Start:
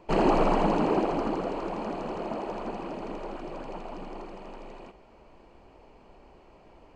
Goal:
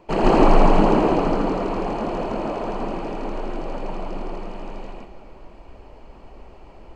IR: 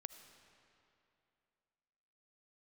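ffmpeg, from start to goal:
-filter_complex "[0:a]asplit=2[s0][s1];[1:a]atrim=start_sample=2205,lowshelf=f=82:g=11.5,adelay=140[s2];[s1][s2]afir=irnorm=-1:irlink=0,volume=2.37[s3];[s0][s3]amix=inputs=2:normalize=0,volume=1.33"

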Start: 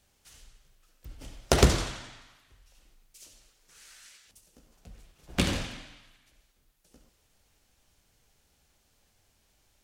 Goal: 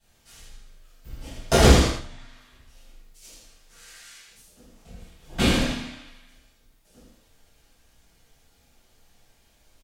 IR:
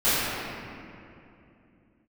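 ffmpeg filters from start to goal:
-filter_complex "[0:a]asettb=1/sr,asplit=3[s0][s1][s2];[s0]atrim=end=1.844[s3];[s1]atrim=start=1.84:end=3.22,asetpts=PTS-STARTPTS,afade=t=in:d=0.004:c=qsin,afade=t=out:st=1.376:d=0.004:c=qsin,acrossover=split=160[s4][s5];[s5]acompressor=threshold=0.00158:ratio=3[s6];[s4][s6]amix=inputs=2:normalize=0[s7];[s2]atrim=start=3.216[s8];[s3][s7]acrossfade=d=0.004:c1=hsin:c2=qsin[s9];[s9][s8]acrossfade=d=0.004:c1=qsin:c2=hsin,aecho=1:1:80|160|240:0.562|0.118|0.0248[s10];[1:a]atrim=start_sample=2205,atrim=end_sample=3969[s11];[s10][s11]afir=irnorm=-1:irlink=0,volume=0.398"

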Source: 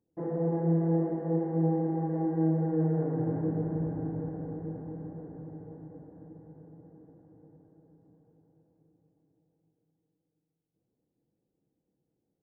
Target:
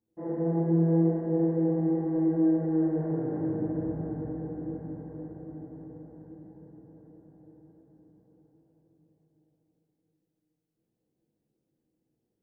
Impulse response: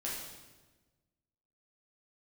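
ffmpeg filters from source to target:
-filter_complex "[1:a]atrim=start_sample=2205[s0];[0:a][s0]afir=irnorm=-1:irlink=0,volume=0.794"

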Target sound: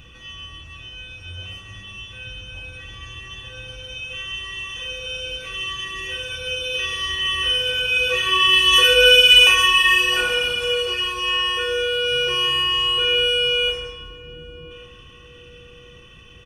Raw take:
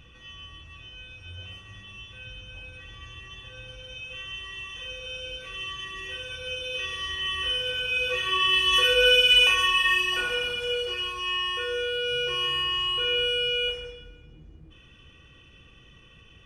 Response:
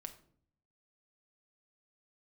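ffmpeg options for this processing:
-filter_complex "[0:a]highshelf=f=5800:g=6.5,asplit=2[s0][s1];[s1]adelay=1135,lowpass=f=1100:p=1,volume=0.15,asplit=2[s2][s3];[s3]adelay=1135,lowpass=f=1100:p=1,volume=0.54,asplit=2[s4][s5];[s5]adelay=1135,lowpass=f=1100:p=1,volume=0.54,asplit=2[s6][s7];[s7]adelay=1135,lowpass=f=1100:p=1,volume=0.54,asplit=2[s8][s9];[s9]adelay=1135,lowpass=f=1100:p=1,volume=0.54[s10];[s2][s4][s6][s8][s10]amix=inputs=5:normalize=0[s11];[s0][s11]amix=inputs=2:normalize=0,volume=2"

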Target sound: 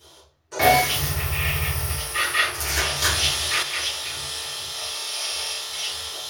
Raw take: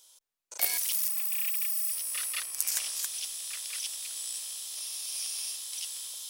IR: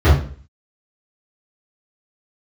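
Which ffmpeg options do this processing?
-filter_complex "[1:a]atrim=start_sample=2205[s0];[0:a][s0]afir=irnorm=-1:irlink=0,asettb=1/sr,asplit=3[s1][s2][s3];[s1]atrim=end=3.024[s4];[s2]atrim=start=3.02:end=3.63,asetpts=PTS-STARTPTS,afade=t=in:d=0.004:c=qsin,afade=t=out:st=0.606:d=0.004:c=qsin,acontrast=49[s5];[s3]atrim=start=3.626[s6];[s4][s5]acrossfade=d=0.004:c1=hsin:c2=qsin[s7];[s7][s6]acrossfade=d=0.004:c1=qsin:c2=hsin"

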